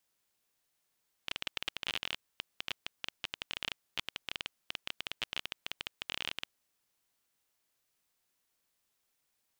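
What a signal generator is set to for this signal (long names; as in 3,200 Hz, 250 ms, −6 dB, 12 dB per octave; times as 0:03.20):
Geiger counter clicks 18 per second −17.5 dBFS 5.23 s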